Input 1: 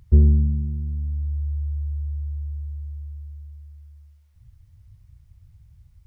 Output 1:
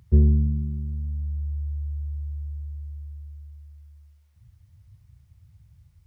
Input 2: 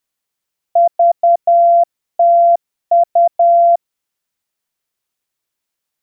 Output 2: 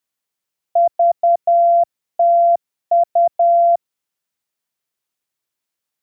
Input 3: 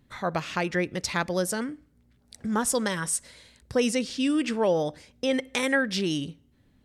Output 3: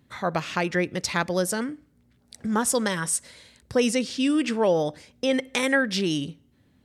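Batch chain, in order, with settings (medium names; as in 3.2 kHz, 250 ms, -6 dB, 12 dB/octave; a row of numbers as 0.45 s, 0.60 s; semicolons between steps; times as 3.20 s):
high-pass 74 Hz; peak normalisation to -9 dBFS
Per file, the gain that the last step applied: 0.0 dB, -3.0 dB, +2.0 dB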